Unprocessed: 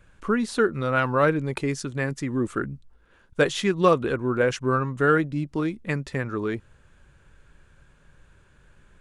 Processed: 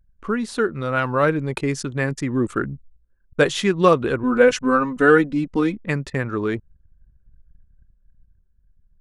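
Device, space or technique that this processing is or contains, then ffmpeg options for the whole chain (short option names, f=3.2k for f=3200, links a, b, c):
voice memo with heavy noise removal: -filter_complex "[0:a]asettb=1/sr,asplit=3[a][b][c];[a]atrim=end=4.234[d];[b]atrim=start=4.23:end=5.77,asetpts=PTS-STARTPTS,afade=t=in:d=0.004:c=qsin,afade=t=out:st=1.536:d=0.004:c=qsin,aecho=1:1:4:0.92,atrim=end_sample=67914[e];[c]atrim=start=5.766[f];[d][e]acrossfade=d=0.004:c1=hsin:c2=qsin[g];[g][f]acrossfade=d=0.004:c1=qsin:c2=hsin,anlmdn=0.0631,dynaudnorm=f=280:g=11:m=6.5dB"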